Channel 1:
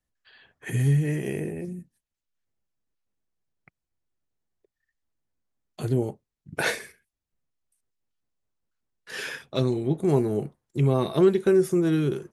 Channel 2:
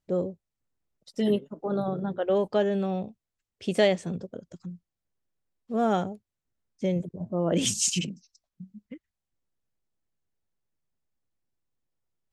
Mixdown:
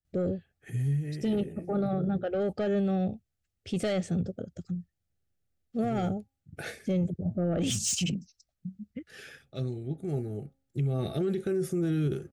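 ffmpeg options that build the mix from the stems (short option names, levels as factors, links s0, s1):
-filter_complex "[0:a]bandreject=f=268.8:t=h:w=4,bandreject=f=537.6:t=h:w=4,bandreject=f=806.4:t=h:w=4,volume=0.562,afade=t=in:st=10.63:d=0.31:silence=0.354813[s0];[1:a]asoftclip=type=tanh:threshold=0.1,adelay=50,volume=1[s1];[s0][s1]amix=inputs=2:normalize=0,asuperstop=centerf=1000:order=8:qfactor=3.6,equalizer=f=78:t=o:w=1.8:g=13.5,alimiter=limit=0.0794:level=0:latency=1:release=30"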